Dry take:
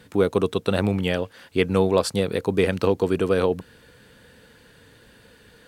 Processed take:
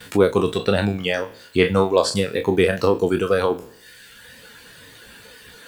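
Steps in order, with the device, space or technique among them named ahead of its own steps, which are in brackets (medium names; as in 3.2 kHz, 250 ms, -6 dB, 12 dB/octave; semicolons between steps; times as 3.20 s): spectral sustain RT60 0.61 s; 0.57–2.16 s: low-pass 8.3 kHz 12 dB/octave; noise-reduction cassette on a plain deck (tape noise reduction on one side only encoder only; wow and flutter 25 cents; white noise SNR 36 dB); gate with hold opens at -39 dBFS; reverb removal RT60 1.3 s; trim +3 dB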